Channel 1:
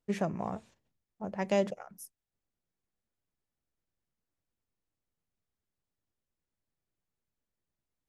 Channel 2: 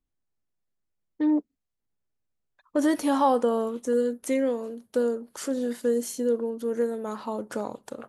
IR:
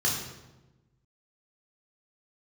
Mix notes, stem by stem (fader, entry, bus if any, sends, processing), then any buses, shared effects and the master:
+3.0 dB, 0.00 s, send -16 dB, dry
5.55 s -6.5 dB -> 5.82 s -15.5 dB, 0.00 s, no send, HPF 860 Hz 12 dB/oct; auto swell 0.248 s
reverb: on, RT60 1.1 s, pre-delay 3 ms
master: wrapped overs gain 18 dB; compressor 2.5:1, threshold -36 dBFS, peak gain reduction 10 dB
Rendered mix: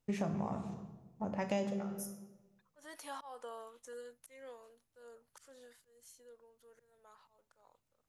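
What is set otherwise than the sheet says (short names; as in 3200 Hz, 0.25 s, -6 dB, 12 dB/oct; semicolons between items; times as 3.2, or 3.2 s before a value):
stem 2 -6.5 dB -> -13.0 dB; master: missing wrapped overs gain 18 dB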